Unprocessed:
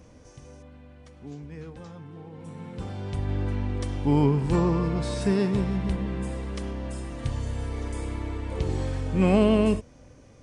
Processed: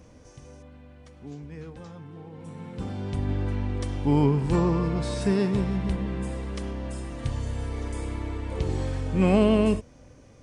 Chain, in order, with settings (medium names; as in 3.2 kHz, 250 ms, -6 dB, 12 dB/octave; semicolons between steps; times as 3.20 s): 2.79–3.33 s: peaking EQ 240 Hz +6.5 dB